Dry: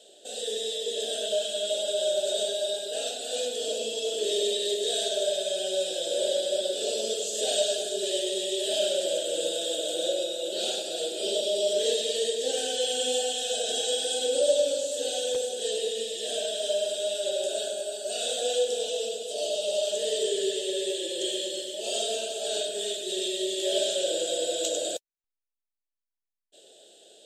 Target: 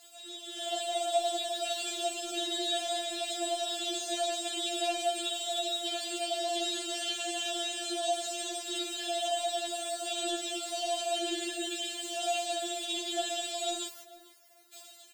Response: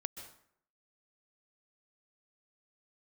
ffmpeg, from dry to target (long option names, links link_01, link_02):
-filter_complex "[0:a]aeval=exprs='val(0)+0.5*0.00944*sgn(val(0))':channel_layout=same,acrossover=split=2800[link_01][link_02];[link_02]acompressor=threshold=-39dB:ratio=4:attack=1:release=60[link_03];[link_01][link_03]amix=inputs=2:normalize=0,highpass=860,bandreject=frequency=3300:width=12,dynaudnorm=framelen=160:gausssize=13:maxgain=12dB,atempo=1.8,afftfilt=real='hypot(re,im)*cos(2*PI*random(0))':imag='hypot(re,im)*sin(2*PI*random(1))':win_size=512:overlap=0.75,asplit=2[link_04][link_05];[link_05]adelay=444,lowpass=frequency=1800:poles=1,volume=-17dB,asplit=2[link_06][link_07];[link_07]adelay=444,lowpass=frequency=1800:poles=1,volume=0.24[link_08];[link_06][link_08]amix=inputs=2:normalize=0[link_09];[link_04][link_09]amix=inputs=2:normalize=0,afftfilt=real='re*4*eq(mod(b,16),0)':imag='im*4*eq(mod(b,16),0)':win_size=2048:overlap=0.75"